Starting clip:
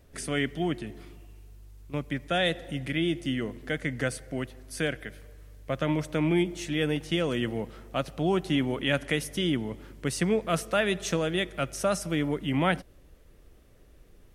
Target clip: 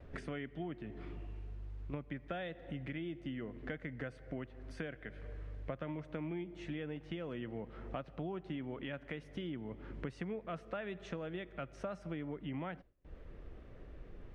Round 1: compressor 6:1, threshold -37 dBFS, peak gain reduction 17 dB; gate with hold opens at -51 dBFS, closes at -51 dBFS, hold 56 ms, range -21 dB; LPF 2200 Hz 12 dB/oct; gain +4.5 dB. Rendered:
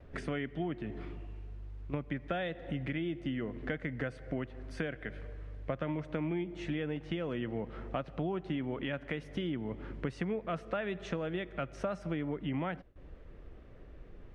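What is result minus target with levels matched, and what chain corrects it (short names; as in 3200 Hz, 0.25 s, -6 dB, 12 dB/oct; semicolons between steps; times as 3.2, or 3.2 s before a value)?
compressor: peak gain reduction -6 dB
compressor 6:1, threshold -44.5 dBFS, peak gain reduction 23 dB; gate with hold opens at -51 dBFS, closes at -51 dBFS, hold 56 ms, range -21 dB; LPF 2200 Hz 12 dB/oct; gain +4.5 dB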